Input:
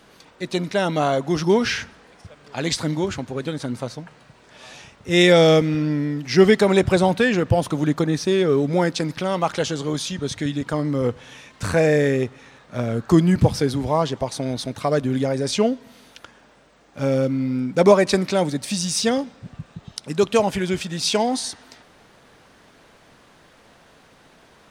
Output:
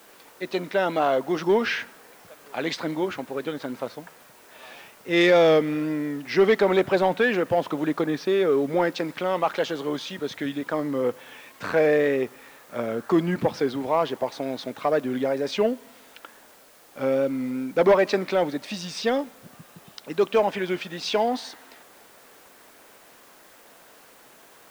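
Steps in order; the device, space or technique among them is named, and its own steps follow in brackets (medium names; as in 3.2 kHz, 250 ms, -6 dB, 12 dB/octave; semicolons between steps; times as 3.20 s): tape answering machine (band-pass 310–3000 Hz; saturation -10.5 dBFS, distortion -17 dB; wow and flutter; white noise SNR 30 dB)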